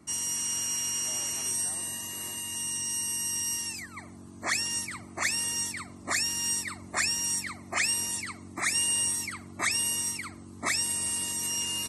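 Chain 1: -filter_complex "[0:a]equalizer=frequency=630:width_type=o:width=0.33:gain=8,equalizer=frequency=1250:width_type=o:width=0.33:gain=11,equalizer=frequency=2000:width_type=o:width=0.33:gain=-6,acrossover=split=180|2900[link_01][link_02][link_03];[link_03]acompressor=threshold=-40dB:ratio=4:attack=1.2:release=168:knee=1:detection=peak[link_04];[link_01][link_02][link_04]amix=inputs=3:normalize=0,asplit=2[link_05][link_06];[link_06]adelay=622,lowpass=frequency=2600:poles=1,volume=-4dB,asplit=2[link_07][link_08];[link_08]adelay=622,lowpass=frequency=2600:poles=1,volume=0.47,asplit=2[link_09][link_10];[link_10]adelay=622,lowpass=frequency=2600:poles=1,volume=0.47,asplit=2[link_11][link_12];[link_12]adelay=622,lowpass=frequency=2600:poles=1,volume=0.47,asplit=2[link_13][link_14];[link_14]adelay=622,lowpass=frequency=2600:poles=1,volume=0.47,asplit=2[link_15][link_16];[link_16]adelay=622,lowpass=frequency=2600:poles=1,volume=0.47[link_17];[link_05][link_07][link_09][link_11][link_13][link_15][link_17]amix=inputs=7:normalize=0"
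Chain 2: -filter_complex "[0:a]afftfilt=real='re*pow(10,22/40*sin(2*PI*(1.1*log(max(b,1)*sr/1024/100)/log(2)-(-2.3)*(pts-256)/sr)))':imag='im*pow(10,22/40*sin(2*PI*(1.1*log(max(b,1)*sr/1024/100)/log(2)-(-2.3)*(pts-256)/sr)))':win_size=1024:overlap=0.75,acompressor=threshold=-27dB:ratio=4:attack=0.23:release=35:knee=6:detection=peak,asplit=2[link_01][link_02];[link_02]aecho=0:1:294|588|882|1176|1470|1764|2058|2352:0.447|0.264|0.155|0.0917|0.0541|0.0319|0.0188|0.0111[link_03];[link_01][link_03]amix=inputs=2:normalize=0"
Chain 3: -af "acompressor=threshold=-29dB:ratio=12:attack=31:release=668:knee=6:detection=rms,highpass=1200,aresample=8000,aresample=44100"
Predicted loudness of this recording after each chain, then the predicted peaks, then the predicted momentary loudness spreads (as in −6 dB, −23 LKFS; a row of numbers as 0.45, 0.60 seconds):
−33.5, −28.5, −40.5 LKFS; −13.0, −19.0, −22.5 dBFS; 7, 4, 8 LU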